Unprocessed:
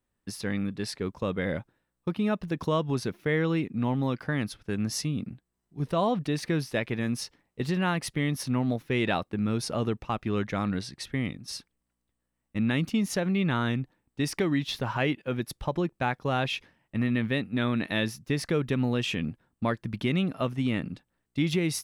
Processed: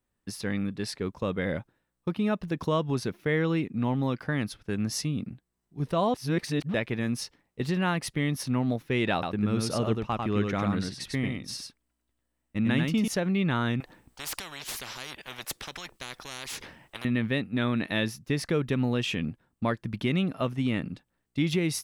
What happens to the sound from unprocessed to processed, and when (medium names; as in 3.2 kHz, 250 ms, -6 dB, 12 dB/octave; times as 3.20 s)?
6.14–6.74 s: reverse
9.13–13.08 s: delay 97 ms -4 dB
13.80–17.05 s: spectrum-flattening compressor 10:1